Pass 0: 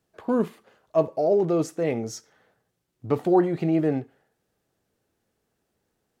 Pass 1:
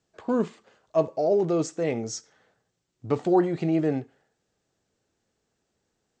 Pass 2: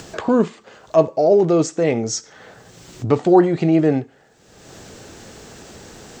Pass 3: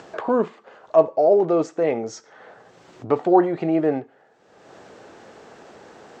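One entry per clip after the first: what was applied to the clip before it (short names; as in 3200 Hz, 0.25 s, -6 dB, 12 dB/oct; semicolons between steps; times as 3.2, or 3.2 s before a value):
steep low-pass 8000 Hz 72 dB/oct; high shelf 5300 Hz +9 dB; gain -1.5 dB
upward compressor, threshold -26 dBFS; gain +8.5 dB
band-pass 810 Hz, Q 0.72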